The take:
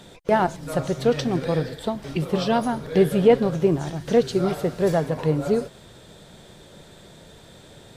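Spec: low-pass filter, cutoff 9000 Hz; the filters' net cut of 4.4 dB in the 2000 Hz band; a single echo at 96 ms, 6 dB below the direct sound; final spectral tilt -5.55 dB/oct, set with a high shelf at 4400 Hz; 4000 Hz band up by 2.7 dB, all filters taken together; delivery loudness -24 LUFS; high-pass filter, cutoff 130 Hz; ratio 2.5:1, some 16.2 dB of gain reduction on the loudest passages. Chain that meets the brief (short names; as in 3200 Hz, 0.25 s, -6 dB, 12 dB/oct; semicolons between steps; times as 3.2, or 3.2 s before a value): HPF 130 Hz; LPF 9000 Hz; bell 2000 Hz -7.5 dB; bell 4000 Hz +4 dB; high shelf 4400 Hz +3.5 dB; compressor 2.5:1, threshold -37 dBFS; echo 96 ms -6 dB; gain +11.5 dB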